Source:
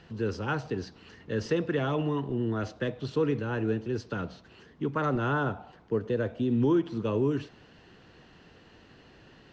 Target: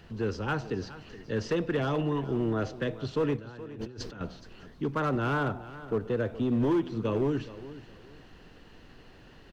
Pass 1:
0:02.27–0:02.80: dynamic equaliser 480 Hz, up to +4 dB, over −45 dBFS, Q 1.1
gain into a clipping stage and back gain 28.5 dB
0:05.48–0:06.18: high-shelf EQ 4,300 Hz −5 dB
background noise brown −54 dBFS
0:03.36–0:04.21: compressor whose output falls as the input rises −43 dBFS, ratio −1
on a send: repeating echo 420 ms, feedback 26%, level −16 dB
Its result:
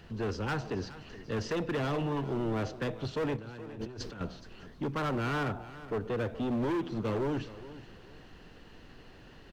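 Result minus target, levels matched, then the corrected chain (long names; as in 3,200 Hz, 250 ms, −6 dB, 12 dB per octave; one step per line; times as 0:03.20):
gain into a clipping stage and back: distortion +10 dB
0:02.27–0:02.80: dynamic equaliser 480 Hz, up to +4 dB, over −45 dBFS, Q 1.1
gain into a clipping stage and back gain 21.5 dB
0:05.48–0:06.18: high-shelf EQ 4,300 Hz −5 dB
background noise brown −54 dBFS
0:03.36–0:04.21: compressor whose output falls as the input rises −43 dBFS, ratio −1
on a send: repeating echo 420 ms, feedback 26%, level −16 dB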